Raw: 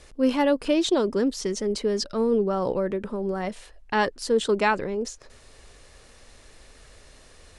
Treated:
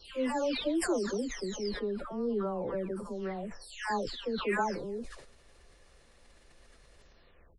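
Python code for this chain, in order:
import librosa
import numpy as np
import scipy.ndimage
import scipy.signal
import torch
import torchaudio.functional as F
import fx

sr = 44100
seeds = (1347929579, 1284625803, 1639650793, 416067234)

y = fx.spec_delay(x, sr, highs='early', ms=566)
y = fx.high_shelf(y, sr, hz=4700.0, db=-6.0)
y = fx.sustainer(y, sr, db_per_s=62.0)
y = y * 10.0 ** (-8.0 / 20.0)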